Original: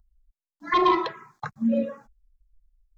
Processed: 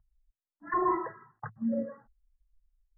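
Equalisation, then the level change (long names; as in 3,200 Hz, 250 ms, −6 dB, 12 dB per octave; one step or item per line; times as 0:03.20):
linear-phase brick-wall low-pass 2,000 Hz
parametric band 110 Hz +11.5 dB 0.27 octaves
−7.5 dB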